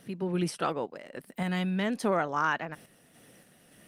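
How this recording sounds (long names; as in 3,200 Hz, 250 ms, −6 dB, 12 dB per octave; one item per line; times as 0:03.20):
sample-and-hold tremolo
Opus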